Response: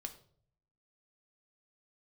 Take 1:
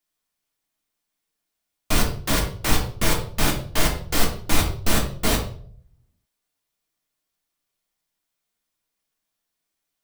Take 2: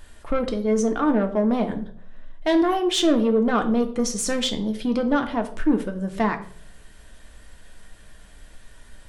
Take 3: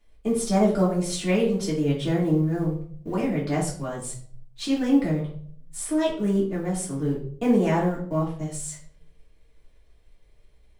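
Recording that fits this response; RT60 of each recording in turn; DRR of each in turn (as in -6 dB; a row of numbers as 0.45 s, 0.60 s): 2; 0.55 s, 0.55 s, 0.55 s; -1.0 dB, 5.5 dB, -6.0 dB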